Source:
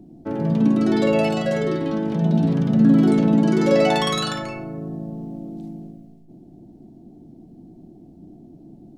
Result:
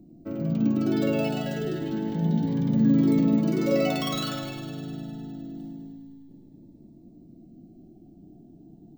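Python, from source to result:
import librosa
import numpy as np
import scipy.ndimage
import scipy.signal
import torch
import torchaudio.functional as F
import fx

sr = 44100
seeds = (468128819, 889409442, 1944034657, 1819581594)

p1 = fx.peak_eq(x, sr, hz=1000.0, db=-2.0, octaves=0.77)
p2 = p1 + fx.echo_heads(p1, sr, ms=102, heads='first and second', feedback_pct=65, wet_db=-14, dry=0)
p3 = np.repeat(p2[::2], 2)[:len(p2)]
p4 = fx.notch_cascade(p3, sr, direction='rising', hz=0.28)
y = p4 * 10.0 ** (-5.5 / 20.0)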